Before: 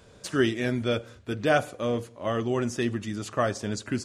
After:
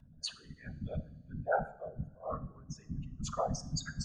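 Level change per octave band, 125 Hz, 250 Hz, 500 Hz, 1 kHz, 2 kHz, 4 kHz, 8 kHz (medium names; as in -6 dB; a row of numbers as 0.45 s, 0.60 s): -8.0 dB, -16.0 dB, -12.5 dB, -7.0 dB, -14.0 dB, -8.5 dB, -5.0 dB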